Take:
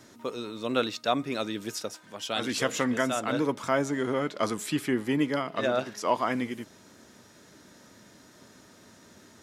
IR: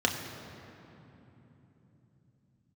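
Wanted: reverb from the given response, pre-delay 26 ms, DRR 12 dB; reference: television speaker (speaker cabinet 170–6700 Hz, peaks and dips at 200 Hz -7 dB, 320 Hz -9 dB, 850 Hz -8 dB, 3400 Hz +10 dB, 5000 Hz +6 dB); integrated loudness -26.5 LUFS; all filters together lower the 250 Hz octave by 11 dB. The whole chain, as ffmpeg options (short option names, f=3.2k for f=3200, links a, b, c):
-filter_complex "[0:a]equalizer=f=250:t=o:g=-6.5,asplit=2[a][b];[1:a]atrim=start_sample=2205,adelay=26[c];[b][c]afir=irnorm=-1:irlink=0,volume=-23dB[d];[a][d]amix=inputs=2:normalize=0,highpass=f=170:w=0.5412,highpass=f=170:w=1.3066,equalizer=f=200:t=q:w=4:g=-7,equalizer=f=320:t=q:w=4:g=-9,equalizer=f=850:t=q:w=4:g=-8,equalizer=f=3.4k:t=q:w=4:g=10,equalizer=f=5k:t=q:w=4:g=6,lowpass=f=6.7k:w=0.5412,lowpass=f=6.7k:w=1.3066,volume=3.5dB"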